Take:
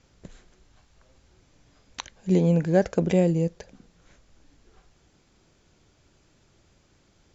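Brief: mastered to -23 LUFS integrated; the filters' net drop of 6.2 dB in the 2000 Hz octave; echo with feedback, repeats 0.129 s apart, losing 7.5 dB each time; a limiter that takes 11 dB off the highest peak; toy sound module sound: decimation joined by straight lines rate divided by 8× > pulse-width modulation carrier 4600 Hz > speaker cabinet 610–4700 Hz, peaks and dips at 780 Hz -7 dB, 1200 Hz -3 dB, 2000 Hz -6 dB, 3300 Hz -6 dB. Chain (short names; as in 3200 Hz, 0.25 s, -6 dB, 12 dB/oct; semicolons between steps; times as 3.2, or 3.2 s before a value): bell 2000 Hz -4 dB; limiter -18.5 dBFS; feedback echo 0.129 s, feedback 42%, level -7.5 dB; decimation joined by straight lines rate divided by 8×; pulse-width modulation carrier 4600 Hz; speaker cabinet 610–4700 Hz, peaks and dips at 780 Hz -7 dB, 1200 Hz -3 dB, 2000 Hz -6 dB, 3300 Hz -6 dB; gain +16 dB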